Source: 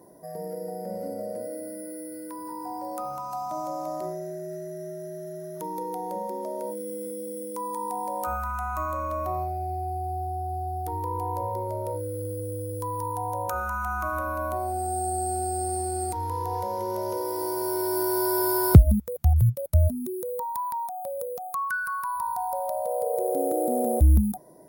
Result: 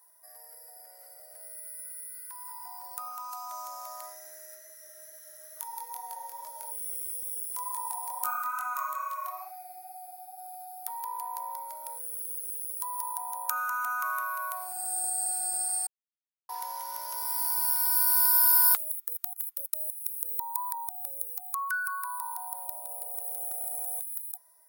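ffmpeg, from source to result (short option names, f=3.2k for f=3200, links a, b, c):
-filter_complex "[0:a]asplit=3[a][b][c];[a]afade=t=out:st=4.54:d=0.02[d];[b]flanger=delay=20:depth=4.1:speed=2.3,afade=t=in:st=4.54:d=0.02,afade=t=out:st=10.37:d=0.02[e];[c]afade=t=in:st=10.37:d=0.02[f];[d][e][f]amix=inputs=3:normalize=0,asplit=3[g][h][i];[g]atrim=end=15.87,asetpts=PTS-STARTPTS,afade=t=out:st=15.866:d=0.004:c=hsin[j];[h]atrim=start=15.87:end=16.49,asetpts=PTS-STARTPTS,volume=0[k];[i]atrim=start=16.49,asetpts=PTS-STARTPTS,afade=t=in:d=0.004:c=hsin[l];[j][k][l]concat=n=3:v=0:a=1,highpass=f=1.1k:w=0.5412,highpass=f=1.1k:w=1.3066,highshelf=f=10k:g=10.5,dynaudnorm=f=350:g=21:m=8.5dB,volume=-4dB"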